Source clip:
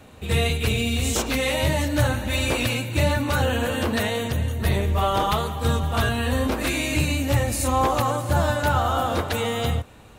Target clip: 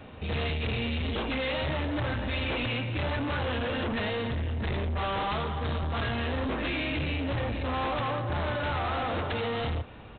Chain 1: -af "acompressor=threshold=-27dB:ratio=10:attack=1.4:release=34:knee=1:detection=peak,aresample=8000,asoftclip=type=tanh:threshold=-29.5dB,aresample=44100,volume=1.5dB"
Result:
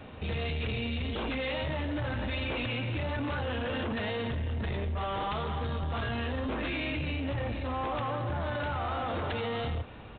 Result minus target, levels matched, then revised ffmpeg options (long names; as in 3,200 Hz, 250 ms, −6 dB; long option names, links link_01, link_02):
downward compressor: peak gain reduction +13.5 dB
-af "aresample=8000,asoftclip=type=tanh:threshold=-29.5dB,aresample=44100,volume=1.5dB"